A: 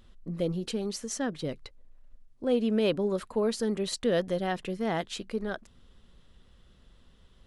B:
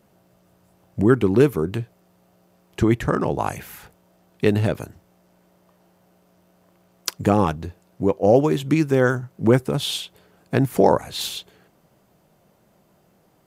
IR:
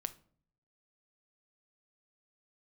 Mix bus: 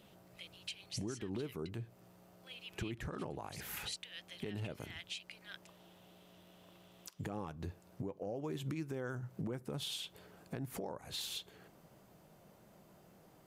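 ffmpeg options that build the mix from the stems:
-filter_complex "[0:a]acompressor=threshold=-31dB:ratio=4,highpass=f=2.5k:t=q:w=2.9,volume=-4.5dB[a];[1:a]acompressor=threshold=-26dB:ratio=6,volume=-4.5dB,asplit=2[b][c];[c]volume=-10.5dB[d];[2:a]atrim=start_sample=2205[e];[d][e]afir=irnorm=-1:irlink=0[f];[a][b][f]amix=inputs=3:normalize=0,alimiter=level_in=7.5dB:limit=-24dB:level=0:latency=1:release=289,volume=-7.5dB"

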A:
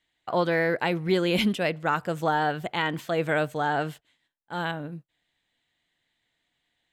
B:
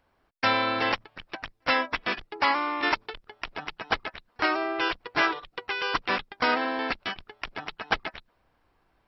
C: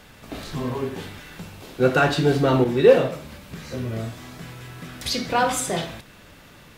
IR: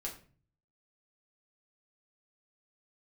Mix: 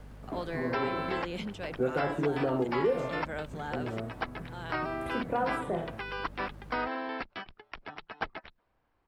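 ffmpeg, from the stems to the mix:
-filter_complex "[0:a]equalizer=f=6.8k:t=o:w=1.5:g=13,volume=-13dB[a];[1:a]adelay=300,volume=-6dB[b];[2:a]firequalizer=gain_entry='entry(530,0);entry(4900,-29);entry(8800,-4)':delay=0.05:min_phase=1,aeval=exprs='val(0)+0.00708*(sin(2*PI*50*n/s)+sin(2*PI*2*50*n/s)/2+sin(2*PI*3*50*n/s)/3+sin(2*PI*4*50*n/s)/4+sin(2*PI*5*50*n/s)/5)':c=same,acrusher=bits=8:mix=0:aa=0.000001,volume=-3.5dB[c];[a][b][c]amix=inputs=3:normalize=0,aemphasis=mode=reproduction:type=50kf,acrossover=split=220|1900|5600[d][e][f][g];[d]acompressor=threshold=-42dB:ratio=4[h];[e]acompressor=threshold=-27dB:ratio=4[i];[f]acompressor=threshold=-45dB:ratio=4[j];[g]acompressor=threshold=-60dB:ratio=4[k];[h][i][j][k]amix=inputs=4:normalize=0"

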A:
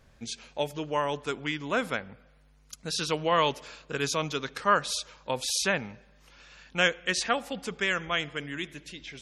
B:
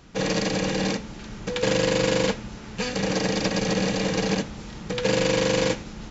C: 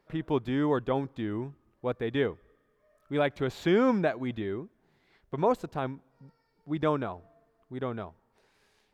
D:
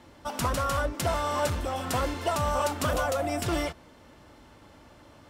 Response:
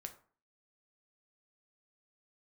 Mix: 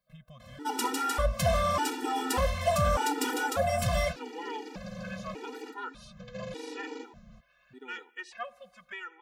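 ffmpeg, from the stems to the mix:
-filter_complex "[0:a]acrossover=split=520 2500:gain=0.158 1 0.178[a][b][c];[a][b][c]amix=inputs=3:normalize=0,adelay=1100,volume=-7dB[d];[1:a]highshelf=f=2.9k:g=-9.5,adelay=1300,volume=-14dB[e];[2:a]aemphasis=mode=production:type=75kf,acompressor=threshold=-30dB:ratio=2,volume=-12dB[f];[3:a]adelay=400,volume=2dB,asplit=2[g][h];[h]volume=-3.5dB[i];[4:a]atrim=start_sample=2205[j];[i][j]afir=irnorm=-1:irlink=0[k];[d][e][f][g][k]amix=inputs=5:normalize=0,asoftclip=type=tanh:threshold=-17dB,afftfilt=real='re*gt(sin(2*PI*0.84*pts/sr)*(1-2*mod(floor(b*sr/1024/250),2)),0)':imag='im*gt(sin(2*PI*0.84*pts/sr)*(1-2*mod(floor(b*sr/1024/250),2)),0)':win_size=1024:overlap=0.75"

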